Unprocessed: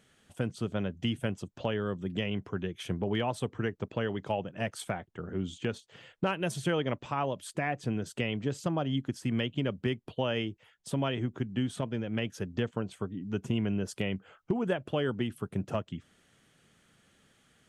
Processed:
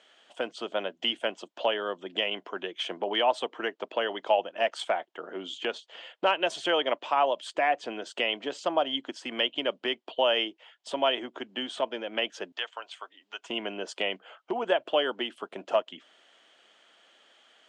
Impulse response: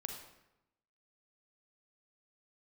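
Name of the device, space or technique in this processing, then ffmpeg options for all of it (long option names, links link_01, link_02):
phone speaker on a table: -filter_complex "[0:a]highpass=frequency=360:width=0.5412,highpass=frequency=360:width=1.3066,equalizer=frequency=420:width_type=q:width=4:gain=-5,equalizer=frequency=660:width_type=q:width=4:gain=6,equalizer=frequency=940:width_type=q:width=4:gain=4,equalizer=frequency=3100:width_type=q:width=4:gain=7,equalizer=frequency=6000:width_type=q:width=4:gain=-4,lowpass=frequency=6800:width=0.5412,lowpass=frequency=6800:width=1.3066,asettb=1/sr,asplit=3[link_01][link_02][link_03];[link_01]atrim=end=12.524[link_04];[link_02]atrim=start=12.52:end=13.5,asetpts=PTS-STARTPTS,afade=type=in:duration=0.004:curve=qsin,afade=type=out:start_time=0.976:duration=0.004:curve=qsin,highpass=1100[link_05];[link_03]atrim=start=13.496[link_06];[link_04][link_05]acrossfade=duration=0.004:curve1=hsin:curve2=qsin[link_07];[link_07][link_06]acrossfade=duration=0.004:curve1=qsin:curve2=hsin,volume=5dB"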